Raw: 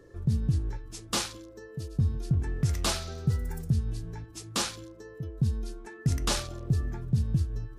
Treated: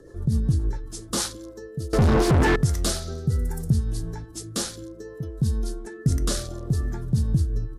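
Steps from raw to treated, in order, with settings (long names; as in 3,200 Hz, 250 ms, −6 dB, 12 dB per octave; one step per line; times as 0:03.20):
graphic EQ with 15 bands 100 Hz −4 dB, 2,500 Hz −10 dB, 10,000 Hz +5 dB
in parallel at −2.5 dB: brickwall limiter −24 dBFS, peak gain reduction 9 dB
on the sum: rotating-speaker cabinet horn 7.5 Hz, later 0.65 Hz, at 0:00.84
0:01.93–0:02.56: mid-hump overdrive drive 46 dB, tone 1,400 Hz, clips at −14.5 dBFS
downsampling to 32,000 Hz
level +4 dB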